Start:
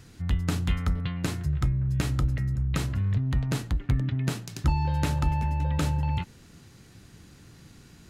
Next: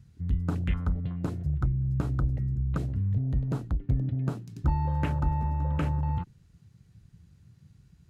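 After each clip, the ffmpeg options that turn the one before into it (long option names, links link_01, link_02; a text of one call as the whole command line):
ffmpeg -i in.wav -af "afwtdn=0.0141,volume=-1.5dB" out.wav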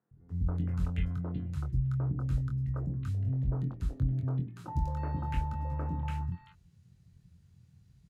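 ffmpeg -i in.wav -filter_complex "[0:a]asplit=2[link_01][link_02];[link_02]adelay=23,volume=-6dB[link_03];[link_01][link_03]amix=inputs=2:normalize=0,acrossover=split=330|1400[link_04][link_05][link_06];[link_04]adelay=110[link_07];[link_06]adelay=290[link_08];[link_07][link_05][link_08]amix=inputs=3:normalize=0,volume=-5dB" out.wav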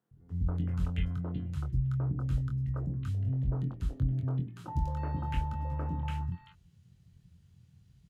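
ffmpeg -i in.wav -af "equalizer=frequency=3100:width=4.2:gain=5.5" out.wav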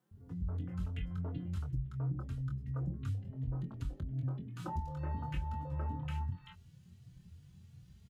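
ffmpeg -i in.wav -filter_complex "[0:a]acompressor=threshold=-39dB:ratio=6,asplit=2[link_01][link_02];[link_02]adelay=3.5,afreqshift=2.8[link_03];[link_01][link_03]amix=inputs=2:normalize=1,volume=7dB" out.wav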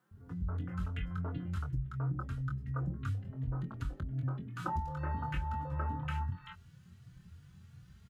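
ffmpeg -i in.wav -af "equalizer=frequency=1400:width=1.4:gain=11,volume=1dB" out.wav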